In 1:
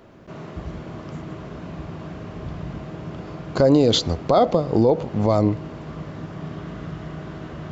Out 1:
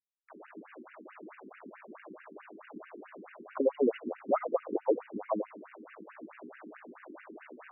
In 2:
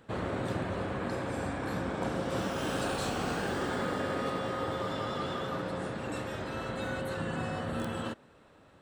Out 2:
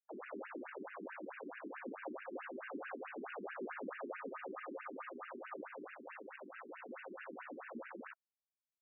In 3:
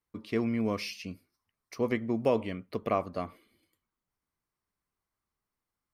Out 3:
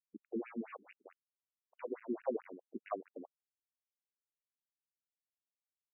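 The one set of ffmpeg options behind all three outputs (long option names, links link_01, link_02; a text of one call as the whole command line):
ffmpeg -i in.wav -af "aeval=exprs='val(0)*gte(abs(val(0)),0.0188)':channel_layout=same,afftfilt=real='re*between(b*sr/1024,280*pow(2100/280,0.5+0.5*sin(2*PI*4.6*pts/sr))/1.41,280*pow(2100/280,0.5+0.5*sin(2*PI*4.6*pts/sr))*1.41)':imag='im*between(b*sr/1024,280*pow(2100/280,0.5+0.5*sin(2*PI*4.6*pts/sr))/1.41,280*pow(2100/280,0.5+0.5*sin(2*PI*4.6*pts/sr))*1.41)':win_size=1024:overlap=0.75,volume=-5.5dB" out.wav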